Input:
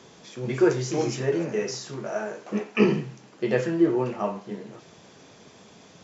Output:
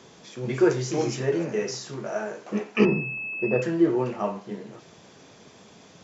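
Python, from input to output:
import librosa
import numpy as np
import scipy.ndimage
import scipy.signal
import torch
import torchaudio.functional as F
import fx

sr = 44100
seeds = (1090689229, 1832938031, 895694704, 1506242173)

y = fx.pwm(x, sr, carrier_hz=2600.0, at=(2.85, 3.62))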